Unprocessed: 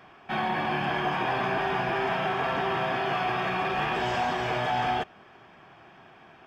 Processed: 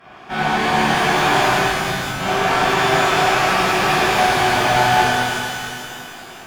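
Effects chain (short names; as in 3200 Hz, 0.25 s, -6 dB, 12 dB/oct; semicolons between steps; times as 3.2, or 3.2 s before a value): one-sided clip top -32 dBFS; 1.56–2.2 inverse Chebyshev low-pass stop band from 950 Hz, stop band 70 dB; shimmer reverb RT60 2.5 s, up +12 st, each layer -8 dB, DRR -11.5 dB; gain +1.5 dB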